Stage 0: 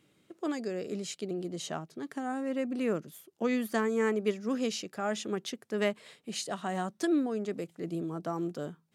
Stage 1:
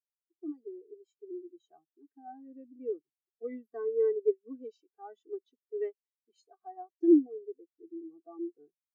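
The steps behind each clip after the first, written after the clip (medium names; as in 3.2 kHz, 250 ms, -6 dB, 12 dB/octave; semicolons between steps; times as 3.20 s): comb 2.6 ms, depth 92%; spectral contrast expander 2.5:1; trim +2.5 dB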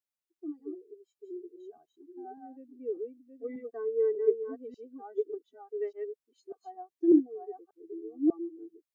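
chunks repeated in reverse 593 ms, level -4 dB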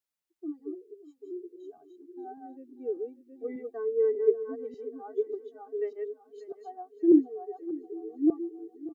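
feedback delay 589 ms, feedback 51%, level -16.5 dB; trim +2 dB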